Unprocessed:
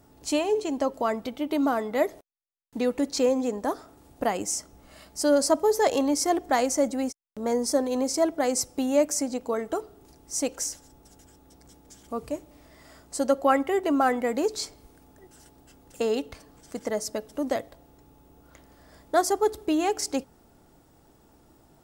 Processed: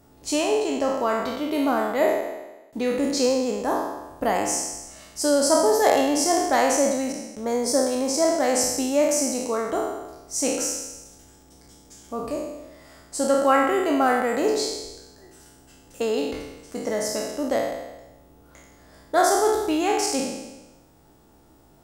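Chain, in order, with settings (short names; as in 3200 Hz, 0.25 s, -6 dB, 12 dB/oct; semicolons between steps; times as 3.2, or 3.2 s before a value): spectral trails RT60 1.09 s; 10.65–12.15 crackle 40/s -46 dBFS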